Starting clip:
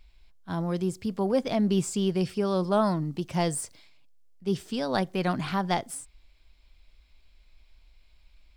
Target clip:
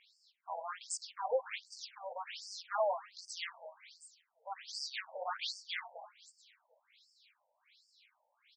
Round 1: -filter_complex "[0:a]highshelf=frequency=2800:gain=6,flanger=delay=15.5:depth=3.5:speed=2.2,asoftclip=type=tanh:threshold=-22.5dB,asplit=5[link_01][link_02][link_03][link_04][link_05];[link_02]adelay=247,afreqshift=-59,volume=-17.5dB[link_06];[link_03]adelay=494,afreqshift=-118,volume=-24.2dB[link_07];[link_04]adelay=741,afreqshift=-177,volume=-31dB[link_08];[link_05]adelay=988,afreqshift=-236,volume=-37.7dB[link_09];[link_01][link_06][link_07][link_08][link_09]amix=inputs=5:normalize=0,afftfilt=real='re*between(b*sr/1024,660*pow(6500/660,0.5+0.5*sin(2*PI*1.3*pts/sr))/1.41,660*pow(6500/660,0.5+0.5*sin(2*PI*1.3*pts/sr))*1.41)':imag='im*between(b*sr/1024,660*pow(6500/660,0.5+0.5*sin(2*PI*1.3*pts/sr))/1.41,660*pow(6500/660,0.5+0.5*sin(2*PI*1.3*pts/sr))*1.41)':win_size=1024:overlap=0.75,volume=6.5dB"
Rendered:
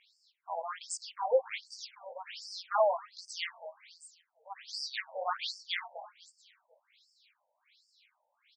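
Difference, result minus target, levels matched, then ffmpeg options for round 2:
soft clipping: distortion −8 dB
-filter_complex "[0:a]highshelf=frequency=2800:gain=6,flanger=delay=15.5:depth=3.5:speed=2.2,asoftclip=type=tanh:threshold=-31.5dB,asplit=5[link_01][link_02][link_03][link_04][link_05];[link_02]adelay=247,afreqshift=-59,volume=-17.5dB[link_06];[link_03]adelay=494,afreqshift=-118,volume=-24.2dB[link_07];[link_04]adelay=741,afreqshift=-177,volume=-31dB[link_08];[link_05]adelay=988,afreqshift=-236,volume=-37.7dB[link_09];[link_01][link_06][link_07][link_08][link_09]amix=inputs=5:normalize=0,afftfilt=real='re*between(b*sr/1024,660*pow(6500/660,0.5+0.5*sin(2*PI*1.3*pts/sr))/1.41,660*pow(6500/660,0.5+0.5*sin(2*PI*1.3*pts/sr))*1.41)':imag='im*between(b*sr/1024,660*pow(6500/660,0.5+0.5*sin(2*PI*1.3*pts/sr))/1.41,660*pow(6500/660,0.5+0.5*sin(2*PI*1.3*pts/sr))*1.41)':win_size=1024:overlap=0.75,volume=6.5dB"

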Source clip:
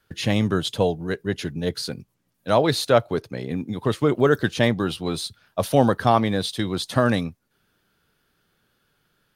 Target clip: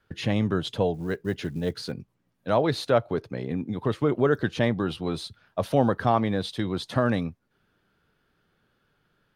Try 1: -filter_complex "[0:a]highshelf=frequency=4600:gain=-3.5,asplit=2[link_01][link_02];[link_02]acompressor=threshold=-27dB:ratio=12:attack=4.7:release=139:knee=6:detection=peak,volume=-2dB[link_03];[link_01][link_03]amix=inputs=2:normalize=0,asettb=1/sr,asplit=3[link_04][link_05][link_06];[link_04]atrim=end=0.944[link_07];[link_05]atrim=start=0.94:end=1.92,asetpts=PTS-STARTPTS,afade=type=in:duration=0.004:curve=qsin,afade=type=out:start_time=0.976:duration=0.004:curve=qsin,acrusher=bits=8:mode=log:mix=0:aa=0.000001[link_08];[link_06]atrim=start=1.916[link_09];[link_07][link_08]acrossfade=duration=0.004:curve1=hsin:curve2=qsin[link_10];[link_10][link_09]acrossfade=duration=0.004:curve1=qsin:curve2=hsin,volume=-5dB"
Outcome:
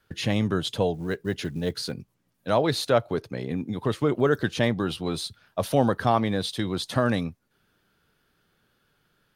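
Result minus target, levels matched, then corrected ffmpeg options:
8,000 Hz band +7.0 dB
-filter_complex "[0:a]highshelf=frequency=4600:gain=-14.5,asplit=2[link_01][link_02];[link_02]acompressor=threshold=-27dB:ratio=12:attack=4.7:release=139:knee=6:detection=peak,volume=-2dB[link_03];[link_01][link_03]amix=inputs=2:normalize=0,asettb=1/sr,asplit=3[link_04][link_05][link_06];[link_04]atrim=end=0.944[link_07];[link_05]atrim=start=0.94:end=1.92,asetpts=PTS-STARTPTS,afade=type=in:duration=0.004:curve=qsin,afade=type=out:start_time=0.976:duration=0.004:curve=qsin,acrusher=bits=8:mode=log:mix=0:aa=0.000001[link_08];[link_06]atrim=start=1.916[link_09];[link_07][link_08]acrossfade=duration=0.004:curve1=hsin:curve2=qsin[link_10];[link_10][link_09]acrossfade=duration=0.004:curve1=qsin:curve2=hsin,volume=-5dB"

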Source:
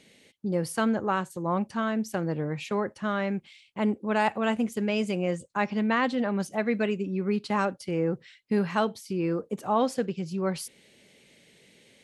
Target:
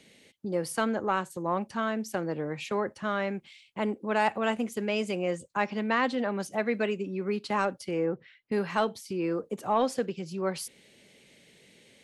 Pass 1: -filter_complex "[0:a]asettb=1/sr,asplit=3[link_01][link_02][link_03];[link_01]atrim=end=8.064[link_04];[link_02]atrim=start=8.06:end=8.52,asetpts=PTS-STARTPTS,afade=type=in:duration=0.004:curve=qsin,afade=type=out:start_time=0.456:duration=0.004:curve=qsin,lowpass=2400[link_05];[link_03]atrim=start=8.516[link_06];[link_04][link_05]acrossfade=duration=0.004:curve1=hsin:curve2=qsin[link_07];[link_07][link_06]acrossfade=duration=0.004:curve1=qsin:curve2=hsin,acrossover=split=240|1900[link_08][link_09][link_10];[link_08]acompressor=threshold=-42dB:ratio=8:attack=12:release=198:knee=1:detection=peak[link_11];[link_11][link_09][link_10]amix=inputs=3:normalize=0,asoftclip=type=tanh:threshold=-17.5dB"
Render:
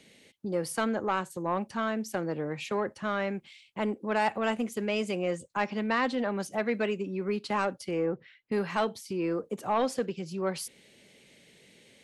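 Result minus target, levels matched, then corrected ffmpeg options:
soft clipping: distortion +10 dB
-filter_complex "[0:a]asettb=1/sr,asplit=3[link_01][link_02][link_03];[link_01]atrim=end=8.064[link_04];[link_02]atrim=start=8.06:end=8.52,asetpts=PTS-STARTPTS,afade=type=in:duration=0.004:curve=qsin,afade=type=out:start_time=0.456:duration=0.004:curve=qsin,lowpass=2400[link_05];[link_03]atrim=start=8.516[link_06];[link_04][link_05]acrossfade=duration=0.004:curve1=hsin:curve2=qsin[link_07];[link_07][link_06]acrossfade=duration=0.004:curve1=qsin:curve2=hsin,acrossover=split=240|1900[link_08][link_09][link_10];[link_08]acompressor=threshold=-42dB:ratio=8:attack=12:release=198:knee=1:detection=peak[link_11];[link_11][link_09][link_10]amix=inputs=3:normalize=0,asoftclip=type=tanh:threshold=-11dB"

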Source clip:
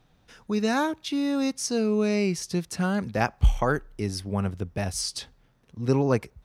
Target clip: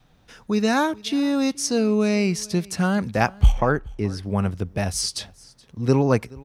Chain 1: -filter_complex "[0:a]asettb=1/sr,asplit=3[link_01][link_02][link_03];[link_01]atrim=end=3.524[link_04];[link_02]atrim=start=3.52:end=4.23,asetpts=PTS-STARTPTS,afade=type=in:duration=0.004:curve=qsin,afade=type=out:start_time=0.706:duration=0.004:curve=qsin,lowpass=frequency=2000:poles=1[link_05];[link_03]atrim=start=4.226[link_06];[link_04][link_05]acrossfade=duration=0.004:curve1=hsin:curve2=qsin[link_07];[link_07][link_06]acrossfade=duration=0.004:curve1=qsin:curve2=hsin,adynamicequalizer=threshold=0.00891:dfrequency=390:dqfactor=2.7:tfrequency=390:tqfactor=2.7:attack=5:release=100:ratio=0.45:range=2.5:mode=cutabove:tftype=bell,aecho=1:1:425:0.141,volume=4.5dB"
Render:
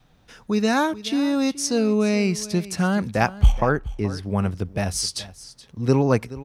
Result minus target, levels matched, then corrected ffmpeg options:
echo-to-direct +6.5 dB
-filter_complex "[0:a]asettb=1/sr,asplit=3[link_01][link_02][link_03];[link_01]atrim=end=3.524[link_04];[link_02]atrim=start=3.52:end=4.23,asetpts=PTS-STARTPTS,afade=type=in:duration=0.004:curve=qsin,afade=type=out:start_time=0.706:duration=0.004:curve=qsin,lowpass=frequency=2000:poles=1[link_05];[link_03]atrim=start=4.226[link_06];[link_04][link_05]acrossfade=duration=0.004:curve1=hsin:curve2=qsin[link_07];[link_07][link_06]acrossfade=duration=0.004:curve1=qsin:curve2=hsin,adynamicequalizer=threshold=0.00891:dfrequency=390:dqfactor=2.7:tfrequency=390:tqfactor=2.7:attack=5:release=100:ratio=0.45:range=2.5:mode=cutabove:tftype=bell,aecho=1:1:425:0.0668,volume=4.5dB"

